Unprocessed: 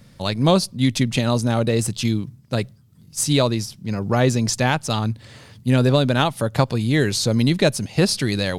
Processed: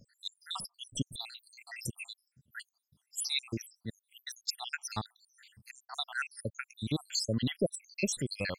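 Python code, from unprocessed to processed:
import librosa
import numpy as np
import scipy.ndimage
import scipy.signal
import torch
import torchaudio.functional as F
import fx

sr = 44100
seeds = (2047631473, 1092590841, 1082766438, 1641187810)

y = fx.spec_dropout(x, sr, seeds[0], share_pct=84)
y = fx.tilt_shelf(y, sr, db=-3.5, hz=970.0)
y = y * librosa.db_to_amplitude(-8.0)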